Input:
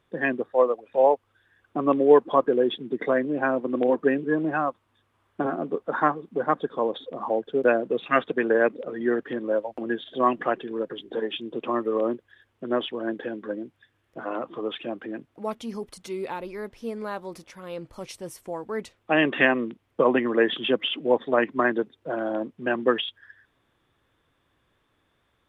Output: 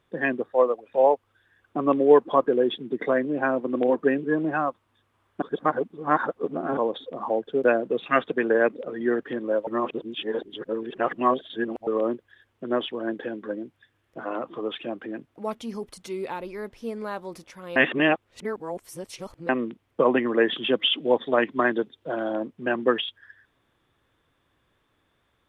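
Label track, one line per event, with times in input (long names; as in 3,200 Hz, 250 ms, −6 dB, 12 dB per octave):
5.420000	6.770000	reverse
9.670000	11.870000	reverse
17.760000	19.490000	reverse
20.730000	22.340000	parametric band 3,400 Hz +7.5 dB 0.43 octaves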